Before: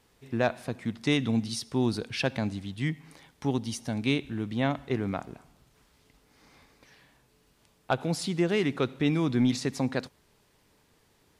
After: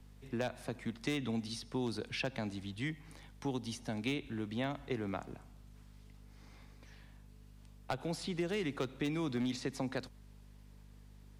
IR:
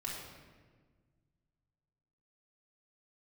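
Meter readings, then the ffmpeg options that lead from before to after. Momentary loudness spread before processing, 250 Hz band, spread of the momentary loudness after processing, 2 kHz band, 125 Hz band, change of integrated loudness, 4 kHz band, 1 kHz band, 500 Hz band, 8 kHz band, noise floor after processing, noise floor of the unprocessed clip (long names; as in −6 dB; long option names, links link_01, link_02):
9 LU, −9.5 dB, 21 LU, −8.5 dB, −10.5 dB, −9.5 dB, −8.0 dB, −9.0 dB, −9.0 dB, −9.5 dB, −57 dBFS, −66 dBFS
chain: -filter_complex "[0:a]aeval=exprs='0.15*(abs(mod(val(0)/0.15+3,4)-2)-1)':channel_layout=same,aeval=exprs='val(0)+0.00282*(sin(2*PI*50*n/s)+sin(2*PI*2*50*n/s)/2+sin(2*PI*3*50*n/s)/3+sin(2*PI*4*50*n/s)/4+sin(2*PI*5*50*n/s)/5)':channel_layout=same,acrossover=split=110|240|3800[link_01][link_02][link_03][link_04];[link_01]acompressor=threshold=-45dB:ratio=4[link_05];[link_02]acompressor=threshold=-43dB:ratio=4[link_06];[link_03]acompressor=threshold=-31dB:ratio=4[link_07];[link_04]acompressor=threshold=-45dB:ratio=4[link_08];[link_05][link_06][link_07][link_08]amix=inputs=4:normalize=0,volume=-4dB"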